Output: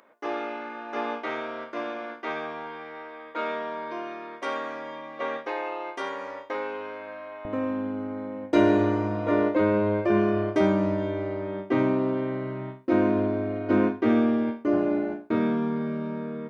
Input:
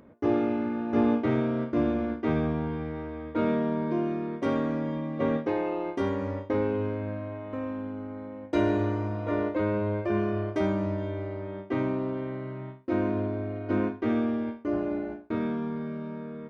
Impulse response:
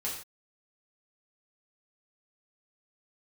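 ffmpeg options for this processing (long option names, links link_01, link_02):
-af "asetnsamples=nb_out_samples=441:pad=0,asendcmd='7.45 highpass f 140',highpass=830,volume=5.5dB"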